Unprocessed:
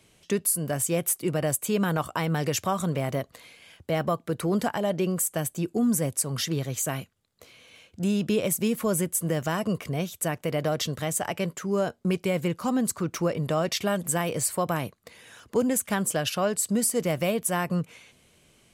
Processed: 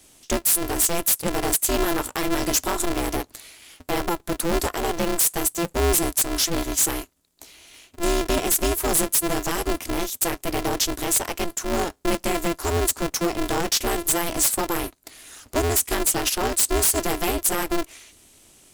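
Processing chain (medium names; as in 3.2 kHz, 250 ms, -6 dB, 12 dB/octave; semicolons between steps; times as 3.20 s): tone controls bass +5 dB, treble +13 dB; wavefolder -13 dBFS; polarity switched at an audio rate 170 Hz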